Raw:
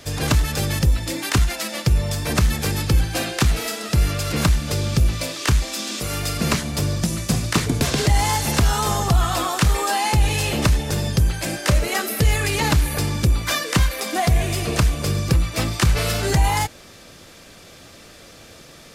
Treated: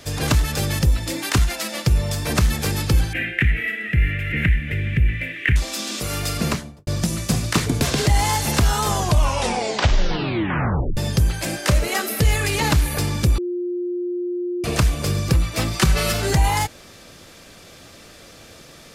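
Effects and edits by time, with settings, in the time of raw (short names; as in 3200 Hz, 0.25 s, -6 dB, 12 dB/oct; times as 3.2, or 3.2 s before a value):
3.13–5.56 EQ curve 110 Hz 0 dB, 400 Hz -6 dB, 760 Hz -16 dB, 1100 Hz -23 dB, 1900 Hz +13 dB, 3000 Hz -2 dB, 4600 Hz -29 dB, 6500 Hz -28 dB, 14000 Hz -17 dB
6.38–6.87 studio fade out
8.88 tape stop 2.09 s
13.38–14.64 bleep 354 Hz -22 dBFS
15.73–16.13 comb 5.3 ms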